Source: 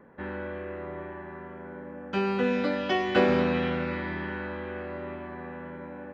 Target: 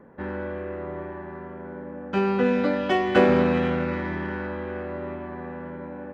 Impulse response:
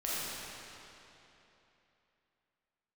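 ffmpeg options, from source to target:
-filter_complex "[0:a]highshelf=frequency=5200:gain=-3.5,asplit=2[link_01][link_02];[link_02]adynamicsmooth=sensitivity=2.5:basefreq=1500,volume=-3dB[link_03];[link_01][link_03]amix=inputs=2:normalize=0"

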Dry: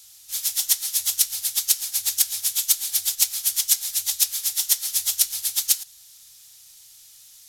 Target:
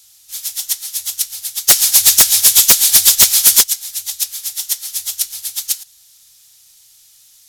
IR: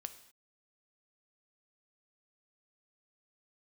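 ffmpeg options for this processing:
-filter_complex "[0:a]asplit=3[link_01][link_02][link_03];[link_01]afade=type=out:start_time=1.67:duration=0.02[link_04];[link_02]aeval=exprs='0.75*sin(PI/2*3.98*val(0)/0.75)':channel_layout=same,afade=type=in:start_time=1.67:duration=0.02,afade=type=out:start_time=3.62:duration=0.02[link_05];[link_03]afade=type=in:start_time=3.62:duration=0.02[link_06];[link_04][link_05][link_06]amix=inputs=3:normalize=0,volume=1dB"

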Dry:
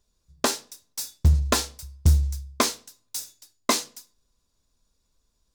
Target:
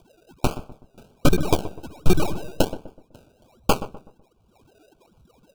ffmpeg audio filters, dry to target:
ffmpeg -i in.wav -filter_complex "[0:a]equalizer=frequency=750:width_type=o:width=0.34:gain=7,asplit=2[link_01][link_02];[link_02]acompressor=threshold=-30dB:ratio=6,volume=1.5dB[link_03];[link_01][link_03]amix=inputs=2:normalize=0,asplit=2[link_04][link_05];[link_05]adelay=22,volume=-11dB[link_06];[link_04][link_06]amix=inputs=2:normalize=0,lowpass=frequency=3300:width_type=q:width=0.5098,lowpass=frequency=3300:width_type=q:width=0.6013,lowpass=frequency=3300:width_type=q:width=0.9,lowpass=frequency=3300:width_type=q:width=2.563,afreqshift=-3900,acrusher=samples=32:mix=1:aa=0.000001:lfo=1:lforange=19.2:lforate=1.3,aeval=exprs='0.794*(cos(1*acos(clip(val(0)/0.794,-1,1)))-cos(1*PI/2))+0.355*(cos(8*acos(clip(val(0)/0.794,-1,1)))-cos(8*PI/2))':channel_layout=same,asplit=2[link_07][link_08];[link_08]adelay=125,lowpass=frequency=1100:poles=1,volume=-12.5dB,asplit=2[link_09][link_10];[link_10]adelay=125,lowpass=frequency=1100:poles=1,volume=0.39,asplit=2[link_11][link_12];[link_12]adelay=125,lowpass=frequency=1100:poles=1,volume=0.39,asplit=2[link_13][link_14];[link_14]adelay=125,lowpass=frequency=1100:poles=1,volume=0.39[link_15];[link_09][link_11][link_13][link_15]amix=inputs=4:normalize=0[link_16];[link_07][link_16]amix=inputs=2:normalize=0,acompressor=mode=upward:threshold=-41dB:ratio=2.5,asuperstop=centerf=1900:order=20:qfactor=2.7,volume=-4.5dB" out.wav

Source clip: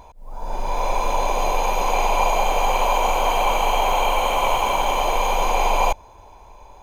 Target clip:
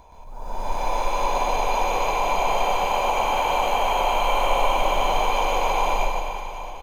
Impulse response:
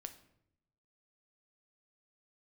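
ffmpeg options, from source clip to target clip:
-filter_complex "[0:a]acrossover=split=710|5500[link_01][link_02][link_03];[link_01]acompressor=threshold=-23dB:ratio=4[link_04];[link_02]acompressor=threshold=-24dB:ratio=4[link_05];[link_03]acompressor=threshold=-47dB:ratio=4[link_06];[link_04][link_05][link_06]amix=inputs=3:normalize=0,aecho=1:1:150|360|654|1066|1642:0.631|0.398|0.251|0.158|0.1,asplit=2[link_07][link_08];[1:a]atrim=start_sample=2205,adelay=122[link_09];[link_08][link_09]afir=irnorm=-1:irlink=0,volume=7.5dB[link_10];[link_07][link_10]amix=inputs=2:normalize=0,volume=-5dB"

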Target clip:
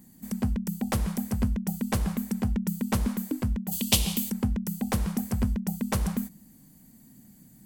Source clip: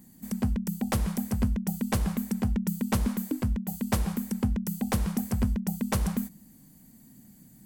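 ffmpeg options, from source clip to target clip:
ffmpeg -i in.wav -filter_complex "[0:a]asplit=3[link_01][link_02][link_03];[link_01]afade=type=out:start_time=3.71:duration=0.02[link_04];[link_02]highshelf=frequency=2200:width_type=q:width=3:gain=11.5,afade=type=in:start_time=3.71:duration=0.02,afade=type=out:start_time=4.29:duration=0.02[link_05];[link_03]afade=type=in:start_time=4.29:duration=0.02[link_06];[link_04][link_05][link_06]amix=inputs=3:normalize=0" out.wav

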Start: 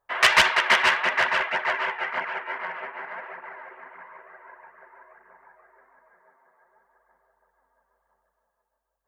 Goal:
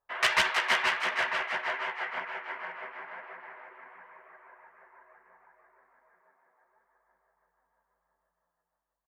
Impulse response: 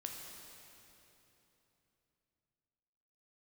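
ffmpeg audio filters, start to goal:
-filter_complex "[0:a]asplit=2[link_01][link_02];[link_02]adelay=16,volume=-12dB[link_03];[link_01][link_03]amix=inputs=2:normalize=0,asplit=5[link_04][link_05][link_06][link_07][link_08];[link_05]adelay=317,afreqshift=120,volume=-8dB[link_09];[link_06]adelay=634,afreqshift=240,volume=-18.2dB[link_10];[link_07]adelay=951,afreqshift=360,volume=-28.3dB[link_11];[link_08]adelay=1268,afreqshift=480,volume=-38.5dB[link_12];[link_04][link_09][link_10][link_11][link_12]amix=inputs=5:normalize=0,volume=-8dB"

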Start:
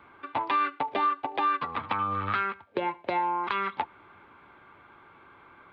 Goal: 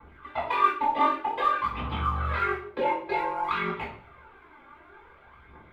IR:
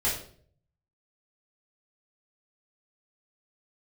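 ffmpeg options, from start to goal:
-filter_complex "[0:a]aphaser=in_gain=1:out_gain=1:delay=3.7:decay=0.73:speed=0.54:type=triangular,aeval=exprs='val(0)*sin(2*PI*23*n/s)':channel_layout=same[link_01];[1:a]atrim=start_sample=2205[link_02];[link_01][link_02]afir=irnorm=-1:irlink=0,volume=-8dB"

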